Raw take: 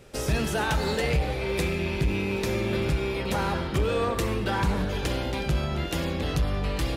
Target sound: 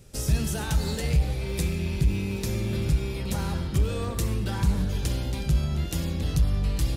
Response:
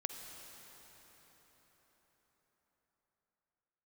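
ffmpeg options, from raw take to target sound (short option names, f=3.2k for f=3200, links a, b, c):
-af "bass=f=250:g=13,treble=f=4k:g=13,volume=-9dB"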